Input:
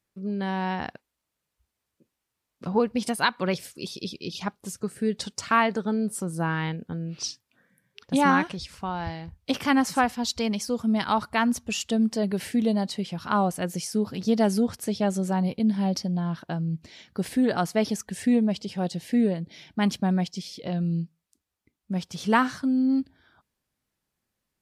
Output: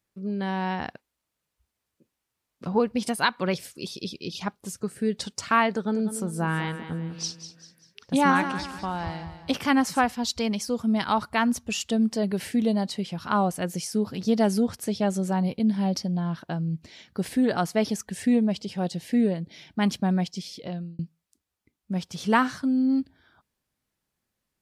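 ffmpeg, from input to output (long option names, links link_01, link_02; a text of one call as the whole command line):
ffmpeg -i in.wav -filter_complex "[0:a]asettb=1/sr,asplit=3[link_01][link_02][link_03];[link_01]atrim=end=5.744[link_04];[link_02]atrim=start=5.74:end=9.61,asetpts=PTS-STARTPTS,afade=type=in:duration=0.004:curve=qsin,afade=type=out:start_time=3.866:duration=0.004:curve=qsin,aecho=1:1:197|394|591|788:0.282|0.113|0.0451|0.018,atrim=end_sample=170667[link_05];[link_03]atrim=start=9.606[link_06];[link_04][link_05]acrossfade=duration=0.004:curve1=hsin:curve2=qsin[link_07];[link_07][link_06]acrossfade=duration=0.004:curve1=qsin:curve2=hsin,asplit=2[link_08][link_09];[link_08]atrim=end=20.99,asetpts=PTS-STARTPTS,afade=type=out:start_time=20.56:duration=0.43[link_10];[link_09]atrim=start=20.99,asetpts=PTS-STARTPTS,afade=type=in:duration=0.004:curve=hsin[link_11];[link_10][link_11]concat=n=2:v=0:a=1" out.wav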